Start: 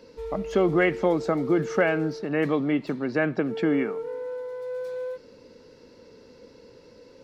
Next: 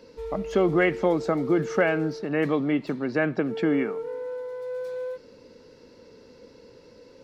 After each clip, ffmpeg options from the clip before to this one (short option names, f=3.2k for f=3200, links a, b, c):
-af anull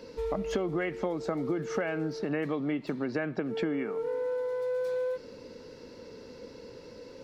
-af "acompressor=threshold=-32dB:ratio=6,volume=3.5dB"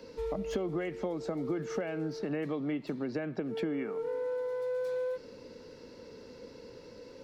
-filter_complex "[0:a]acrossover=split=110|820|2400[a][b][c][d];[c]alimiter=level_in=14.5dB:limit=-24dB:level=0:latency=1:release=209,volume=-14.5dB[e];[d]asoftclip=type=hard:threshold=-39.5dB[f];[a][b][e][f]amix=inputs=4:normalize=0,volume=-2.5dB"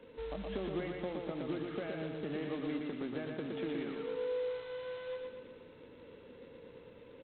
-af "aresample=8000,acrusher=bits=3:mode=log:mix=0:aa=0.000001,aresample=44100,aecho=1:1:118|236|354|472|590|708|826:0.668|0.354|0.188|0.0995|0.0527|0.0279|0.0148,volume=-6.5dB"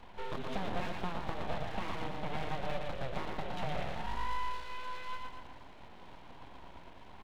-af "aeval=exprs='abs(val(0))':c=same,volume=4.5dB"